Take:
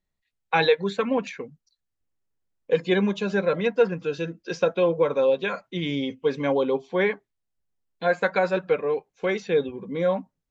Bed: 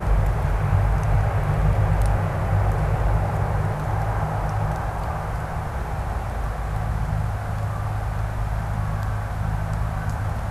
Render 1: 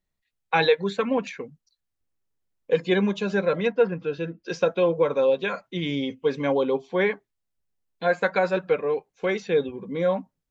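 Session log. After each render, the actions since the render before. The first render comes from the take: 3.72–4.43 air absorption 190 m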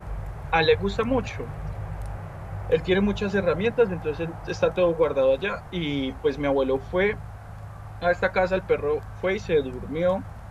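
add bed -13.5 dB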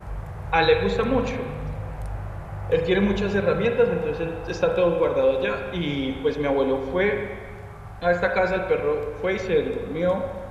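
spring tank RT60 1.5 s, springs 34/40/46 ms, chirp 45 ms, DRR 4 dB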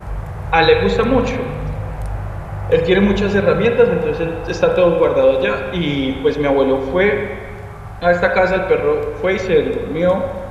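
gain +7.5 dB; limiter -1 dBFS, peak gain reduction 1.5 dB

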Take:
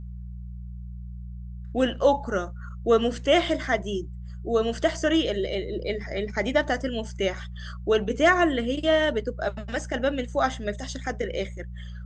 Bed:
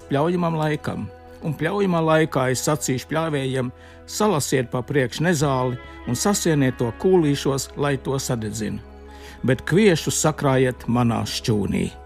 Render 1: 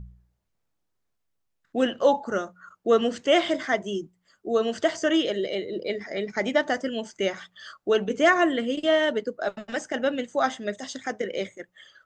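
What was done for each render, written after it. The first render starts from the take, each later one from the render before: de-hum 60 Hz, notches 3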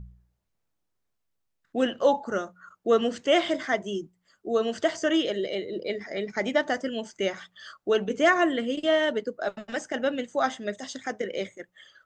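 gain -1.5 dB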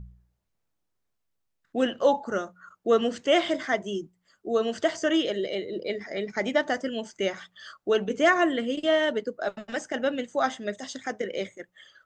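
nothing audible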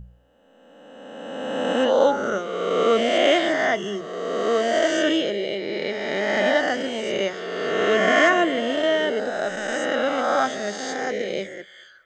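spectral swells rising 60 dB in 2.11 s; narrowing echo 0.22 s, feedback 41%, band-pass 1400 Hz, level -20 dB

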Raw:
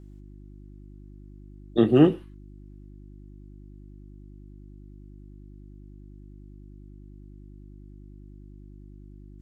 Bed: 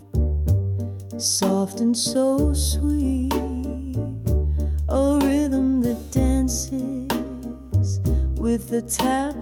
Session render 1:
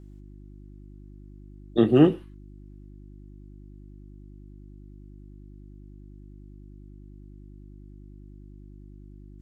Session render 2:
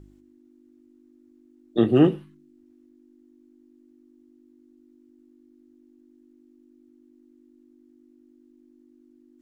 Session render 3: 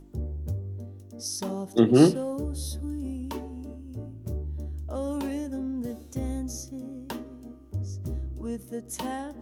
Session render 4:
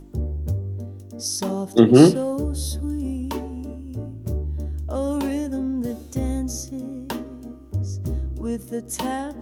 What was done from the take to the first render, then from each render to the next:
nothing audible
de-hum 50 Hz, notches 4
add bed -12 dB
gain +6.5 dB; limiter -1 dBFS, peak gain reduction 1.5 dB

